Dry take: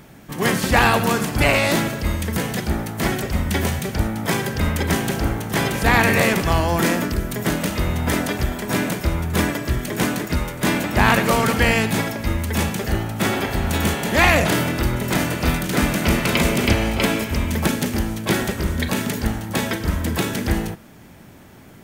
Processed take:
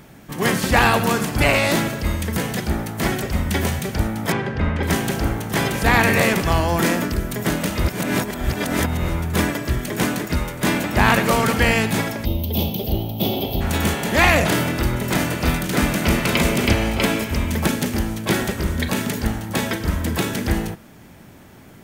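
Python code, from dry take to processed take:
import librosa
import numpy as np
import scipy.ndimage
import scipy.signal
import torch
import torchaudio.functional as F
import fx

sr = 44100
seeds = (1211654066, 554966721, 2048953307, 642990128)

y = fx.lowpass(x, sr, hz=2500.0, slope=12, at=(4.32, 4.83))
y = fx.curve_eq(y, sr, hz=(730.0, 1700.0, 3200.0, 5700.0, 8900.0, 13000.0), db=(0, -29, 5, -7, -26, 9), at=(12.24, 13.6), fade=0.02)
y = fx.edit(y, sr, fx.reverse_span(start_s=7.84, length_s=1.25), tone=tone)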